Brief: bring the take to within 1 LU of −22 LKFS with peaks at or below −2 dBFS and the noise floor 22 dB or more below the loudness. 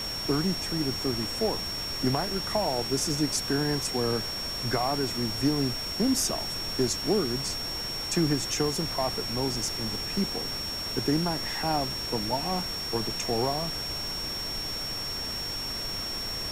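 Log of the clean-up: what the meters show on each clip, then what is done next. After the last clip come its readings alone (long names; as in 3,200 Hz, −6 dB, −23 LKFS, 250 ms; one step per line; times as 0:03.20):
interfering tone 5,500 Hz; level of the tone −32 dBFS; background noise floor −34 dBFS; target noise floor −50 dBFS; integrated loudness −28.0 LKFS; sample peak −13.0 dBFS; target loudness −22.0 LKFS
→ notch filter 5,500 Hz, Q 30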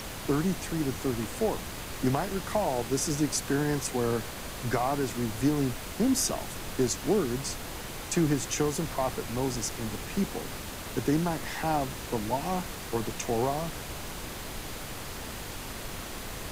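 interfering tone none found; background noise floor −39 dBFS; target noise floor −53 dBFS
→ noise reduction from a noise print 14 dB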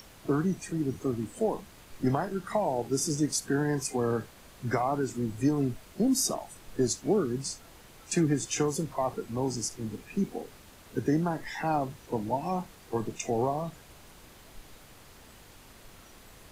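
background noise floor −53 dBFS; integrated loudness −30.5 LKFS; sample peak −14.5 dBFS; target loudness −22.0 LKFS
→ level +8.5 dB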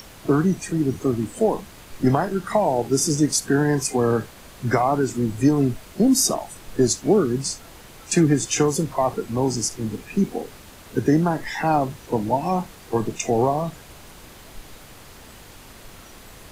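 integrated loudness −22.0 LKFS; sample peak −6.0 dBFS; background noise floor −45 dBFS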